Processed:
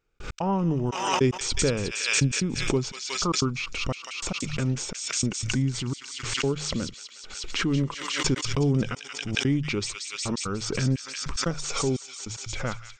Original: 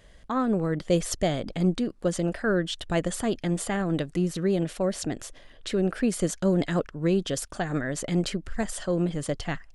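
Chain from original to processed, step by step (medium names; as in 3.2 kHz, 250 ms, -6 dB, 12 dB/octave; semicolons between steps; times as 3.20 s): hum notches 50/100/150/200 Hz; trance gate "..x.xxxxx." 199 bpm -60 dB; tape speed -25%; feedback echo behind a high-pass 181 ms, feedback 63%, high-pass 2.7 kHz, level -3.5 dB; swell ahead of each attack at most 46 dB/s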